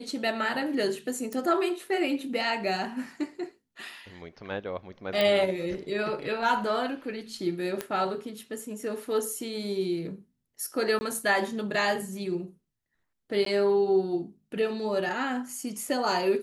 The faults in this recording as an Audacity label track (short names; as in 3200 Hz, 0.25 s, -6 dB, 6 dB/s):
1.330000	1.330000	pop
5.210000	5.210000	pop -13 dBFS
7.810000	7.810000	pop -15 dBFS
10.990000	11.010000	gap 20 ms
13.450000	13.460000	gap 13 ms